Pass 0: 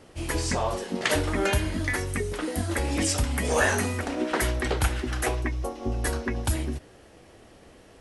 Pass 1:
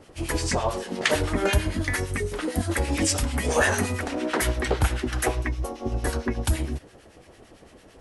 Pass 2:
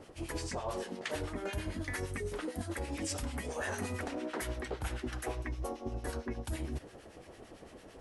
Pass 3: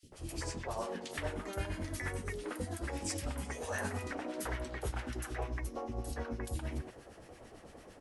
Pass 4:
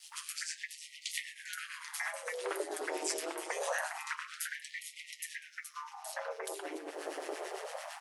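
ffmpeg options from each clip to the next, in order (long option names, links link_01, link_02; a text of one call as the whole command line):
ffmpeg -i in.wav -filter_complex "[0:a]acrossover=split=1200[link_01][link_02];[link_01]aeval=exprs='val(0)*(1-0.7/2+0.7/2*cos(2*PI*8.9*n/s))':channel_layout=same[link_03];[link_02]aeval=exprs='val(0)*(1-0.7/2-0.7/2*cos(2*PI*8.9*n/s))':channel_layout=same[link_04];[link_03][link_04]amix=inputs=2:normalize=0,volume=4.5dB" out.wav
ffmpeg -i in.wav -af "equalizer=frequency=500:width=0.41:gain=3,areverse,acompressor=threshold=-30dB:ratio=10,areverse,volume=-4dB" out.wav
ffmpeg -i in.wav -filter_complex "[0:a]acrossover=split=330|3200[link_01][link_02][link_03];[link_01]adelay=30[link_04];[link_02]adelay=120[link_05];[link_04][link_05][link_03]amix=inputs=3:normalize=0" out.wav
ffmpeg -i in.wav -af "aeval=exprs='val(0)*sin(2*PI*80*n/s)':channel_layout=same,acompressor=threshold=-48dB:ratio=6,afftfilt=real='re*gte(b*sr/1024,260*pow(1900/260,0.5+0.5*sin(2*PI*0.25*pts/sr)))':imag='im*gte(b*sr/1024,260*pow(1900/260,0.5+0.5*sin(2*PI*0.25*pts/sr)))':win_size=1024:overlap=0.75,volume=17.5dB" out.wav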